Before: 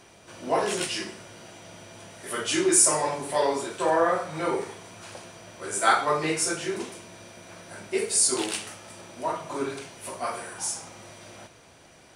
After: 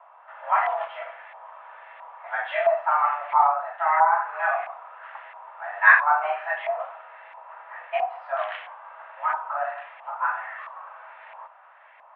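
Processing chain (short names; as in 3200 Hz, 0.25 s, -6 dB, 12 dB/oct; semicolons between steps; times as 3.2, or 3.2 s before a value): mistuned SSB +300 Hz 300–3000 Hz; LFO low-pass saw up 1.5 Hz 990–2000 Hz; 3.47–4.12 high shelf 2100 Hz -8 dB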